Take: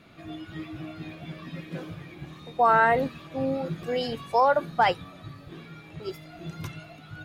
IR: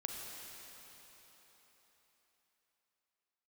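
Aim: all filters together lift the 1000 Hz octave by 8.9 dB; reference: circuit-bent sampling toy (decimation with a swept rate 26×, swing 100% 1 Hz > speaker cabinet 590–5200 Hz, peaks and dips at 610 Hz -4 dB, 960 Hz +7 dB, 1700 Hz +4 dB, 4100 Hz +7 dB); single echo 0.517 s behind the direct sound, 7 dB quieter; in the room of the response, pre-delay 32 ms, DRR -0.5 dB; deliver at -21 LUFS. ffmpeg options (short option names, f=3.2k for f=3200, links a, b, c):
-filter_complex "[0:a]equalizer=f=1k:t=o:g=7,aecho=1:1:517:0.447,asplit=2[a][b];[1:a]atrim=start_sample=2205,adelay=32[c];[b][c]afir=irnorm=-1:irlink=0,volume=0.5dB[d];[a][d]amix=inputs=2:normalize=0,acrusher=samples=26:mix=1:aa=0.000001:lfo=1:lforange=26:lforate=1,highpass=590,equalizer=f=610:t=q:w=4:g=-4,equalizer=f=960:t=q:w=4:g=7,equalizer=f=1.7k:t=q:w=4:g=4,equalizer=f=4.1k:t=q:w=4:g=7,lowpass=f=5.2k:w=0.5412,lowpass=f=5.2k:w=1.3066,volume=-5dB"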